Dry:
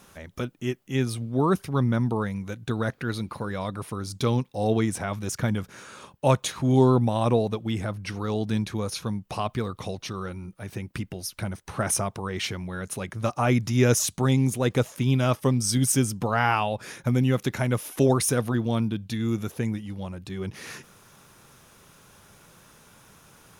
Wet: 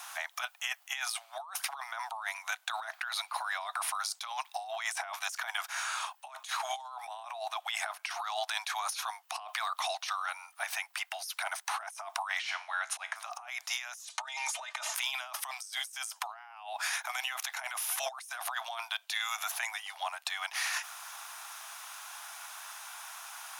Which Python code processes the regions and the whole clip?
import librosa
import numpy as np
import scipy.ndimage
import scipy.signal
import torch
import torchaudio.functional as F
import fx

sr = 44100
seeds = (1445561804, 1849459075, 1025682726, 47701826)

y = fx.chain(x, sr, fx.comb_fb(f0_hz=60.0, decay_s=0.39, harmonics='all', damping=0.0, mix_pct=50),
    fx.auto_swell(attack_ms=138.0),
    fx.air_absorb(metres=59.0), at=(12.39, 13.16))
y = fx.chain(y, sr, fx.lowpass(hz=7200.0, slope=12),
    fx.comb(ms=3.3, depth=0.77), at=(14.05, 14.94))
y = scipy.signal.sosfilt(scipy.signal.butter(16, 680.0, 'highpass', fs=sr, output='sos'), y)
y = fx.over_compress(y, sr, threshold_db=-42.0, ratio=-1.0)
y = y * librosa.db_to_amplitude(3.5)